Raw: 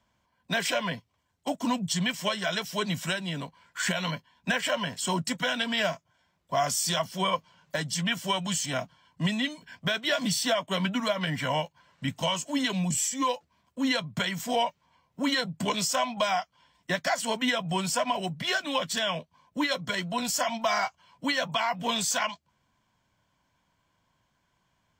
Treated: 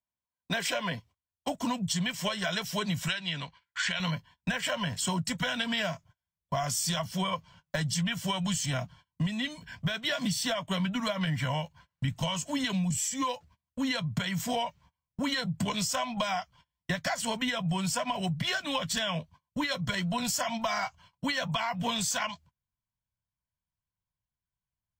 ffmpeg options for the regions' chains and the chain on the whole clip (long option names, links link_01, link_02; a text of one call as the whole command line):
ffmpeg -i in.wav -filter_complex "[0:a]asettb=1/sr,asplit=3[link_01][link_02][link_03];[link_01]atrim=end=3.084[link_04];[link_02]atrim=start=3.08:end=4,asetpts=PTS-STARTPTS,afade=type=in:duration=0.004:curve=qsin,afade=type=out:start_time=0.916:duration=0.004:curve=qsin,lowpass=3600,tiltshelf=frequency=1400:gain=-9[link_05];[link_03]atrim=start=3.996[link_06];[link_04][link_05]acrossfade=duration=0.004:curve1=hsin:curve2=qsin[link_07];[link_07][link_06]acrossfade=duration=0.004:curve1=qsin:curve2=hsin,agate=range=-29dB:threshold=-53dB:ratio=16:detection=peak,asubboost=boost=6.5:cutoff=120,acompressor=threshold=-29dB:ratio=6,volume=2dB" out.wav